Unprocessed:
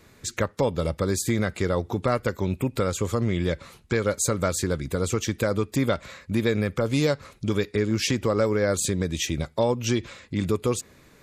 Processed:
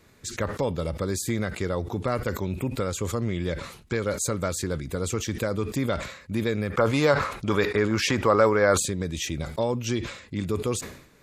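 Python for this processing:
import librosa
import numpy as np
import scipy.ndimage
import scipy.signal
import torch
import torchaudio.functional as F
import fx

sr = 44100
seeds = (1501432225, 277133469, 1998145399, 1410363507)

y = fx.peak_eq(x, sr, hz=1100.0, db=12.5, octaves=2.2, at=(6.7, 8.86))
y = fx.sustainer(y, sr, db_per_s=85.0)
y = F.gain(torch.from_numpy(y), -3.5).numpy()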